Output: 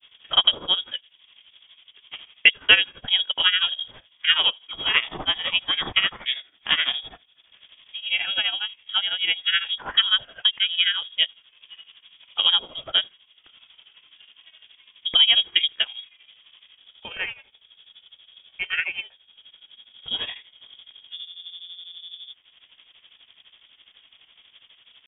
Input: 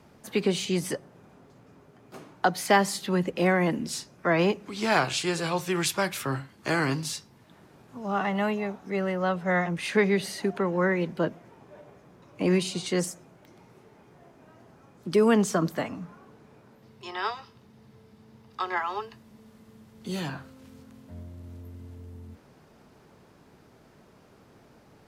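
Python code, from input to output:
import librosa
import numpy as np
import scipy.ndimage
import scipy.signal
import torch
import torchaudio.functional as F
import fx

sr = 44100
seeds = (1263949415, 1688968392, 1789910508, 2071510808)

y = fx.transient(x, sr, attack_db=5, sustain_db=-6)
y = fx.freq_invert(y, sr, carrier_hz=3500)
y = fx.granulator(y, sr, seeds[0], grain_ms=114.0, per_s=12.0, spray_ms=22.0, spread_st=0)
y = y * 10.0 ** (4.5 / 20.0)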